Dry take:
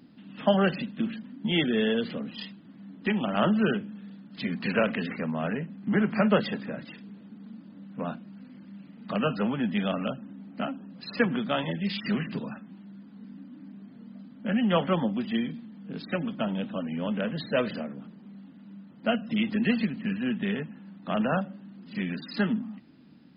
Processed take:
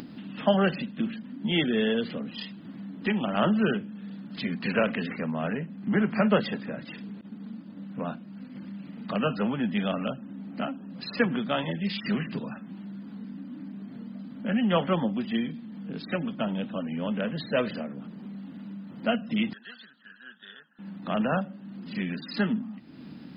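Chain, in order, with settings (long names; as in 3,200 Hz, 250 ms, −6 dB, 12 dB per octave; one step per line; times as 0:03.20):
0:07.21–0:08.56: downward expander −42 dBFS
upward compression, threshold −32 dBFS
0:19.53–0:20.79: pair of resonant band-passes 2,300 Hz, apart 1.2 octaves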